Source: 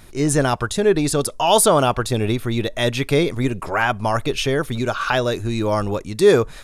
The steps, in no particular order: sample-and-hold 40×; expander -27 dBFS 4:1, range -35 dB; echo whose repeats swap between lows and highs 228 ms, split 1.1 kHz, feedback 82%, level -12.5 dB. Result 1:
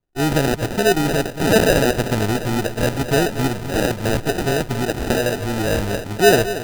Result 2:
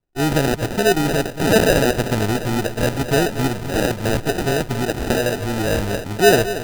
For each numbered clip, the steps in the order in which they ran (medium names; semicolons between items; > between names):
expander > echo whose repeats swap between lows and highs > sample-and-hold; echo whose repeats swap between lows and highs > expander > sample-and-hold